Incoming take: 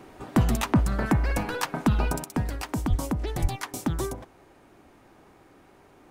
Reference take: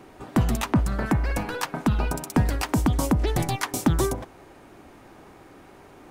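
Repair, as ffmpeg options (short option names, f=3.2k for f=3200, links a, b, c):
-filter_complex "[0:a]asplit=3[a][b][c];[a]afade=t=out:st=2.89:d=0.02[d];[b]highpass=f=140:w=0.5412,highpass=f=140:w=1.3066,afade=t=in:st=2.89:d=0.02,afade=t=out:st=3.01:d=0.02[e];[c]afade=t=in:st=3.01:d=0.02[f];[d][e][f]amix=inputs=3:normalize=0,asplit=3[g][h][i];[g]afade=t=out:st=3.41:d=0.02[j];[h]highpass=f=140:w=0.5412,highpass=f=140:w=1.3066,afade=t=in:st=3.41:d=0.02,afade=t=out:st=3.53:d=0.02[k];[i]afade=t=in:st=3.53:d=0.02[l];[j][k][l]amix=inputs=3:normalize=0,asetnsamples=n=441:p=0,asendcmd='2.24 volume volume 6.5dB',volume=0dB"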